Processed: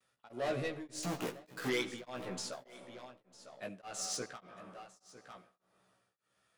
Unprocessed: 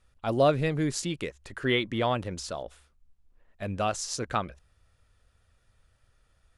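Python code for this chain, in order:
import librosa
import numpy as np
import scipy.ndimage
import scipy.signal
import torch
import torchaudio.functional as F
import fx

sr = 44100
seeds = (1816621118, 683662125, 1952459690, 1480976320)

y = fx.halfwave_hold(x, sr, at=(1.03, 1.68))
y = scipy.signal.sosfilt(scipy.signal.butter(4, 130.0, 'highpass', fs=sr, output='sos'), y)
y = fx.low_shelf(y, sr, hz=290.0, db=-7.5)
y = 10.0 ** (-28.0 / 20.0) * np.tanh(y / 10.0 ** (-28.0 / 20.0))
y = fx.rev_freeverb(y, sr, rt60_s=2.3, hf_ratio=0.4, predelay_ms=35, drr_db=11.5)
y = fx.vibrato(y, sr, rate_hz=0.59, depth_cents=33.0)
y = fx.doubler(y, sr, ms=16.0, db=-2)
y = y + 10.0 ** (-14.5 / 20.0) * np.pad(y, (int(951 * sr / 1000.0), 0))[:len(y)]
y = y * np.abs(np.cos(np.pi * 1.7 * np.arange(len(y)) / sr))
y = F.gain(torch.from_numpy(y), -4.0).numpy()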